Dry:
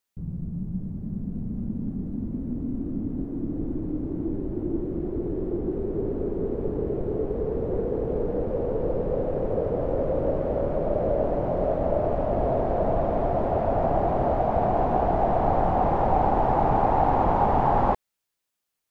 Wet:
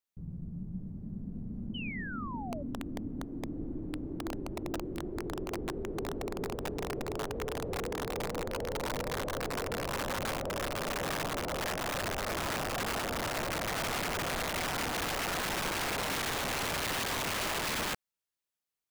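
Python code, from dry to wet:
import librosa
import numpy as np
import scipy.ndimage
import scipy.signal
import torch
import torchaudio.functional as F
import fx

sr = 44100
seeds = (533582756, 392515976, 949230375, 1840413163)

y = (np.mod(10.0 ** (19.5 / 20.0) * x + 1.0, 2.0) - 1.0) / 10.0 ** (19.5 / 20.0)
y = fx.spec_paint(y, sr, seeds[0], shape='fall', start_s=1.74, length_s=0.89, low_hz=550.0, high_hz=3100.0, level_db=-33.0)
y = y * librosa.db_to_amplitude(-9.0)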